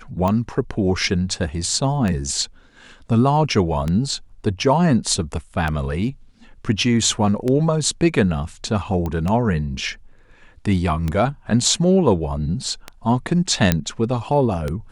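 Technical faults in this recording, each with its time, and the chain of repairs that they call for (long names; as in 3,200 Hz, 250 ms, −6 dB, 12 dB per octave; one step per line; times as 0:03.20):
scratch tick 33 1/3 rpm −11 dBFS
0:09.06: click −14 dBFS
0:13.72: click −1 dBFS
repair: click removal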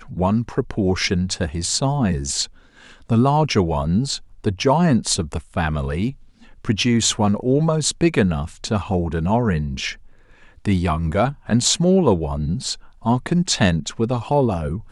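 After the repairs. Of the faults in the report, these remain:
none of them is left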